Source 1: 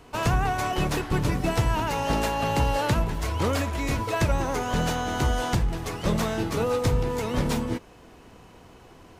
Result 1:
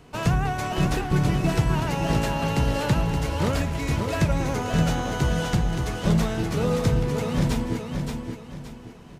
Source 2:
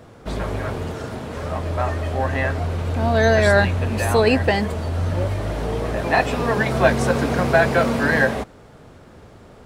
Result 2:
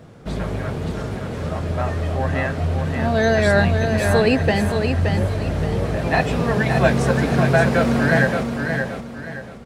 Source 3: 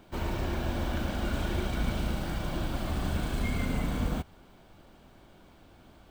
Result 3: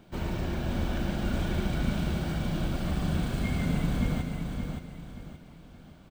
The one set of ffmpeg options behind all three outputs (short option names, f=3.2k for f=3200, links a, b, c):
-af "equalizer=f=160:t=o:w=0.67:g=8,equalizer=f=1k:t=o:w=0.67:g=-3,equalizer=f=16k:t=o:w=0.67:g=-4,aecho=1:1:573|1146|1719|2292:0.531|0.181|0.0614|0.0209,volume=-1dB"